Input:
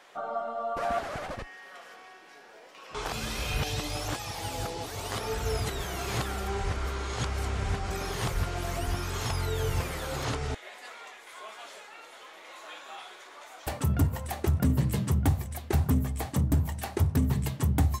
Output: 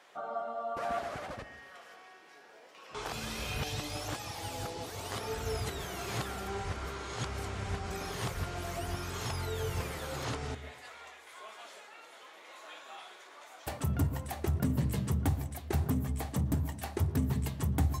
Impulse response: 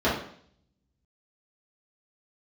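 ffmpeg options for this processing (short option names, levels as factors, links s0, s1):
-filter_complex "[0:a]highpass=62,asplit=2[s0][s1];[1:a]atrim=start_sample=2205,adelay=113[s2];[s1][s2]afir=irnorm=-1:irlink=0,volume=0.0266[s3];[s0][s3]amix=inputs=2:normalize=0,volume=0.596"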